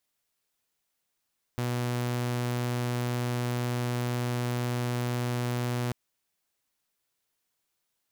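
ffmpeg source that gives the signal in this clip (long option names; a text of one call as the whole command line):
ffmpeg -f lavfi -i "aevalsrc='0.0562*(2*mod(122*t,1)-1)':duration=4.34:sample_rate=44100" out.wav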